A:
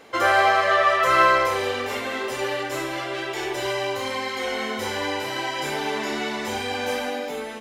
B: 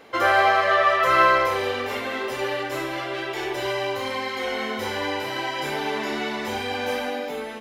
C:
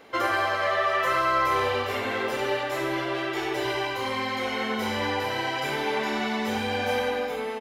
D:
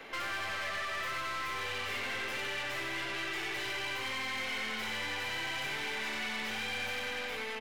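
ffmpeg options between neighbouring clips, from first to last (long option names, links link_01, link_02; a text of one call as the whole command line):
ffmpeg -i in.wav -af "equalizer=frequency=7700:width_type=o:width=0.92:gain=-6.5" out.wav
ffmpeg -i in.wav -filter_complex "[0:a]acrossover=split=4900[link_01][link_02];[link_01]alimiter=limit=-15dB:level=0:latency=1:release=105[link_03];[link_03][link_02]amix=inputs=2:normalize=0,asplit=2[link_04][link_05];[link_05]adelay=91,lowpass=frequency=2900:poles=1,volume=-3dB,asplit=2[link_06][link_07];[link_07]adelay=91,lowpass=frequency=2900:poles=1,volume=0.55,asplit=2[link_08][link_09];[link_09]adelay=91,lowpass=frequency=2900:poles=1,volume=0.55,asplit=2[link_10][link_11];[link_11]adelay=91,lowpass=frequency=2900:poles=1,volume=0.55,asplit=2[link_12][link_13];[link_13]adelay=91,lowpass=frequency=2900:poles=1,volume=0.55,asplit=2[link_14][link_15];[link_15]adelay=91,lowpass=frequency=2900:poles=1,volume=0.55,asplit=2[link_16][link_17];[link_17]adelay=91,lowpass=frequency=2900:poles=1,volume=0.55,asplit=2[link_18][link_19];[link_19]adelay=91,lowpass=frequency=2900:poles=1,volume=0.55[link_20];[link_04][link_06][link_08][link_10][link_12][link_14][link_16][link_18][link_20]amix=inputs=9:normalize=0,volume=-2dB" out.wav
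ffmpeg -i in.wav -filter_complex "[0:a]acrossover=split=110|270|1300|5700[link_01][link_02][link_03][link_04][link_05];[link_01]acompressor=threshold=-50dB:ratio=4[link_06];[link_02]acompressor=threshold=-47dB:ratio=4[link_07];[link_03]acompressor=threshold=-40dB:ratio=4[link_08];[link_04]acompressor=threshold=-35dB:ratio=4[link_09];[link_05]acompressor=threshold=-50dB:ratio=4[link_10];[link_06][link_07][link_08][link_09][link_10]amix=inputs=5:normalize=0,aeval=exprs='(tanh(112*val(0)+0.55)-tanh(0.55))/112':channel_layout=same,equalizer=frequency=2300:width_type=o:width=1.6:gain=8,volume=1.5dB" out.wav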